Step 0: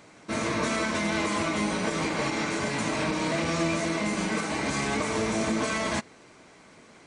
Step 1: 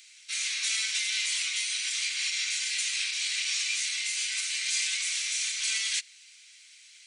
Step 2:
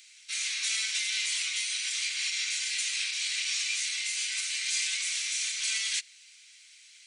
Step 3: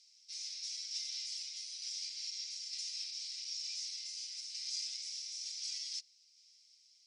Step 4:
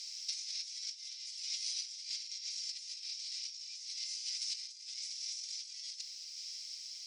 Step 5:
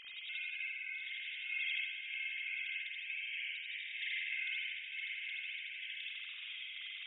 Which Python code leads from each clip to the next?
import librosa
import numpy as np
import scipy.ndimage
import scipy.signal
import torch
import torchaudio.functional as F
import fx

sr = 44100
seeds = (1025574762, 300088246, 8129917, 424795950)

y1 = scipy.signal.sosfilt(scipy.signal.cheby2(4, 60, 780.0, 'highpass', fs=sr, output='sos'), x)
y1 = y1 * 10.0 ** (8.0 / 20.0)
y2 = fx.low_shelf(y1, sr, hz=230.0, db=-8.0)
y2 = y2 * 10.0 ** (-1.0 / 20.0)
y3 = fx.tremolo_shape(y2, sr, shape='saw_down', hz=1.1, depth_pct=35)
y3 = fx.bandpass_q(y3, sr, hz=5200.0, q=11.0)
y3 = y3 * 10.0 ** (2.0 / 20.0)
y4 = fx.over_compress(y3, sr, threshold_db=-50.0, ratio=-0.5)
y4 = y4 * 10.0 ** (10.0 / 20.0)
y5 = fx.sine_speech(y4, sr)
y5 = y5 + 10.0 ** (-8.5 / 20.0) * np.pad(y5, (int(965 * sr / 1000.0), 0))[:len(y5)]
y5 = fx.rev_spring(y5, sr, rt60_s=1.6, pass_ms=(46,), chirp_ms=65, drr_db=-7.5)
y5 = y5 * 10.0 ** (-7.5 / 20.0)